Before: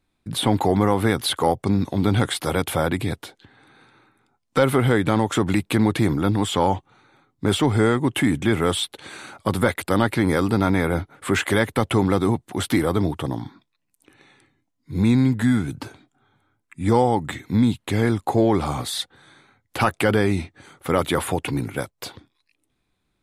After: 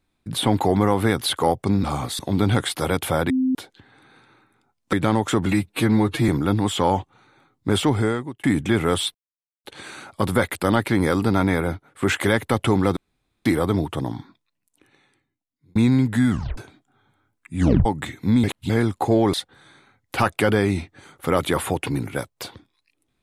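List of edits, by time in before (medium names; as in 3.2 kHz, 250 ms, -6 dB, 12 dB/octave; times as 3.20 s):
2.95–3.20 s: bleep 259 Hz -17 dBFS
4.58–4.97 s: delete
5.50–6.05 s: stretch 1.5×
7.65–8.20 s: fade out
8.91 s: insert silence 0.50 s
10.82–11.29 s: fade out, to -12 dB
12.23–12.72 s: room tone
13.41–15.02 s: fade out
15.57 s: tape stop 0.27 s
16.85 s: tape stop 0.27 s
17.70–17.96 s: reverse
18.60–18.95 s: move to 1.84 s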